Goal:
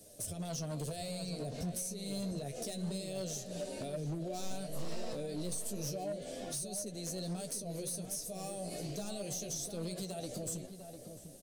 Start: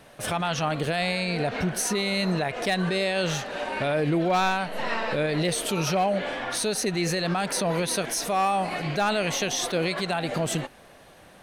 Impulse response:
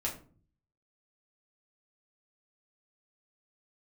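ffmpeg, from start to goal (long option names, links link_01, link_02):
-filter_complex "[0:a]firequalizer=gain_entry='entry(630,0);entry(900,-20);entry(1800,-17);entry(4900,6);entry(7300,13)':delay=0.05:min_phase=1,acrossover=split=140[link_01][link_02];[link_02]acompressor=threshold=-31dB:ratio=6[link_03];[link_01][link_03]amix=inputs=2:normalize=0,flanger=delay=9.4:depth=8.2:regen=28:speed=0.29:shape=triangular,asoftclip=type=hard:threshold=-30.5dB,asplit=2[link_04][link_05];[link_05]adelay=699.7,volume=-8dB,highshelf=frequency=4000:gain=-15.7[link_06];[link_04][link_06]amix=inputs=2:normalize=0,asplit=2[link_07][link_08];[1:a]atrim=start_sample=2205[link_09];[link_08][link_09]afir=irnorm=-1:irlink=0,volume=-20dB[link_10];[link_07][link_10]amix=inputs=2:normalize=0,volume=-4dB"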